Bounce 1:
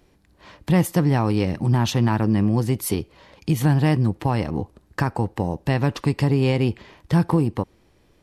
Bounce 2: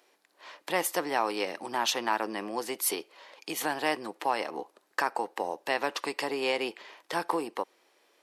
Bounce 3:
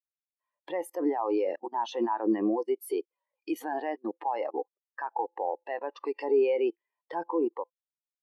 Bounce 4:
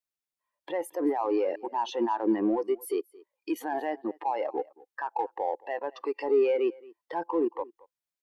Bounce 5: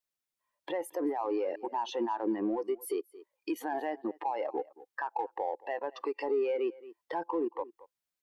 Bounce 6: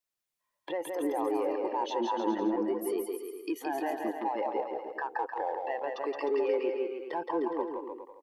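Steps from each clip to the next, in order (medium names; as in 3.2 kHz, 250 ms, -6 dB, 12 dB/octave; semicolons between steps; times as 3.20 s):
Bessel high-pass 610 Hz, order 4
feedback comb 170 Hz, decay 0.41 s, harmonics all, mix 30%; level held to a coarse grid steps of 21 dB; spectral contrast expander 2.5:1; trim +7 dB
in parallel at -11 dB: saturation -32 dBFS, distortion -7 dB; on the sum: delay 223 ms -23 dB
compression 2:1, threshold -35 dBFS, peak gain reduction 8.5 dB; trim +1.5 dB
bouncing-ball echo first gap 170 ms, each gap 0.8×, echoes 5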